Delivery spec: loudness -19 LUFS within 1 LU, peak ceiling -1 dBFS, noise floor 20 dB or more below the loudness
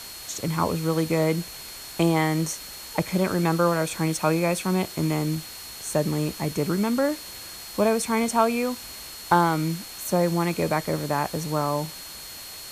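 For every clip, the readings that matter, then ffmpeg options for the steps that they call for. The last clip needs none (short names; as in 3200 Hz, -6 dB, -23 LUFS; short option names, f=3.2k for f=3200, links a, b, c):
steady tone 4300 Hz; tone level -42 dBFS; noise floor -40 dBFS; noise floor target -45 dBFS; loudness -25.0 LUFS; peak -4.0 dBFS; loudness target -19.0 LUFS
-> -af "bandreject=f=4.3k:w=30"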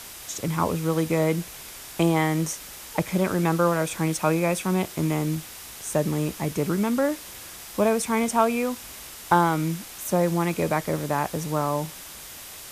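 steady tone none; noise floor -41 dBFS; noise floor target -45 dBFS
-> -af "afftdn=nr=6:nf=-41"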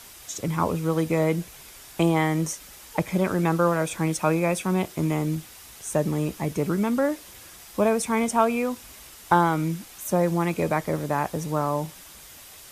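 noise floor -46 dBFS; loudness -25.0 LUFS; peak -4.5 dBFS; loudness target -19.0 LUFS
-> -af "volume=6dB,alimiter=limit=-1dB:level=0:latency=1"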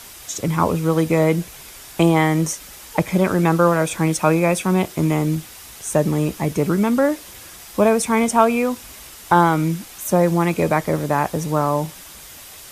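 loudness -19.0 LUFS; peak -1.0 dBFS; noise floor -40 dBFS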